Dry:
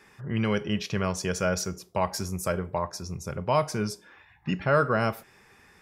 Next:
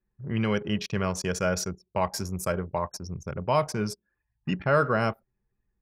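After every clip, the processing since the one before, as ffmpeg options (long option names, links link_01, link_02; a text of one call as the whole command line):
ffmpeg -i in.wav -af "anlmdn=1.58" out.wav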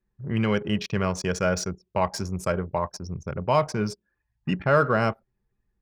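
ffmpeg -i in.wav -af "adynamicsmooth=sensitivity=3.5:basefreq=6300,volume=2.5dB" out.wav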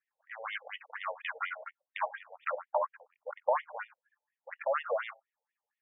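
ffmpeg -i in.wav -af "acompressor=threshold=-24dB:ratio=16,aeval=exprs='0.2*(cos(1*acos(clip(val(0)/0.2,-1,1)))-cos(1*PI/2))+0.0631*(cos(4*acos(clip(val(0)/0.2,-1,1)))-cos(4*PI/2))+0.02*(cos(6*acos(clip(val(0)/0.2,-1,1)))-cos(6*PI/2))':channel_layout=same,afftfilt=real='re*between(b*sr/1024,630*pow(2600/630,0.5+0.5*sin(2*PI*4.2*pts/sr))/1.41,630*pow(2600/630,0.5+0.5*sin(2*PI*4.2*pts/sr))*1.41)':imag='im*between(b*sr/1024,630*pow(2600/630,0.5+0.5*sin(2*PI*4.2*pts/sr))/1.41,630*pow(2600/630,0.5+0.5*sin(2*PI*4.2*pts/sr))*1.41)':win_size=1024:overlap=0.75,volume=3.5dB" out.wav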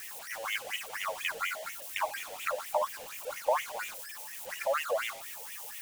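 ffmpeg -i in.wav -af "aeval=exprs='val(0)+0.5*0.00794*sgn(val(0))':channel_layout=same,aexciter=amount=2:drive=6.1:freq=2400" out.wav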